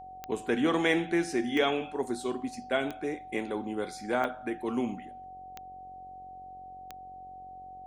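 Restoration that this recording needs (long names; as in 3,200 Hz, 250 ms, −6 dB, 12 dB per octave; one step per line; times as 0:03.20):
click removal
hum removal 45.8 Hz, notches 14
notch filter 750 Hz, Q 30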